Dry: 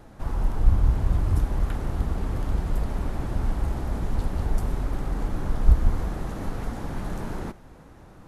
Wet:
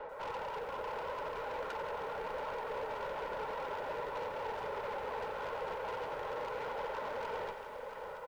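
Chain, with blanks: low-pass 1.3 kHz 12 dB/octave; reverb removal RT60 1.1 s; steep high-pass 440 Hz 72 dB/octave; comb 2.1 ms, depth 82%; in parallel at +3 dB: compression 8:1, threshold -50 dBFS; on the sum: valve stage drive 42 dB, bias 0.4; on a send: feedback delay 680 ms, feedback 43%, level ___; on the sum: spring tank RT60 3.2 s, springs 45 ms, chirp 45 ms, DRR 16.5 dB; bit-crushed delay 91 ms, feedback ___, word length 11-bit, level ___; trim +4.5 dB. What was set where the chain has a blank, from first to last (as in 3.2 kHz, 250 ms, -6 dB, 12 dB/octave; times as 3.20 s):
-9.5 dB, 80%, -10.5 dB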